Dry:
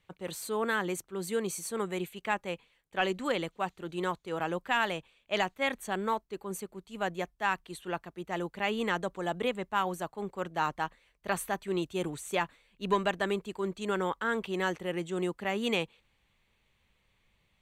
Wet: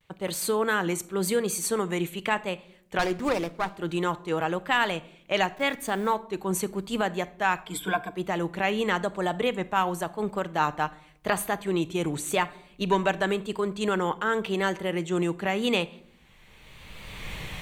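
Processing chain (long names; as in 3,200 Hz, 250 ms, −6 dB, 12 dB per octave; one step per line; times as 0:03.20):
0:05.56–0:06.14: hold until the input has moved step −53 dBFS
camcorder AGC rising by 20 dB per second
0:07.66–0:08.11: EQ curve with evenly spaced ripples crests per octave 1.7, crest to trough 18 dB
pitch vibrato 0.9 Hz 66 cents
convolution reverb RT60 0.65 s, pre-delay 6 ms, DRR 13.5 dB
0:02.99–0:03.76: windowed peak hold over 9 samples
level +4.5 dB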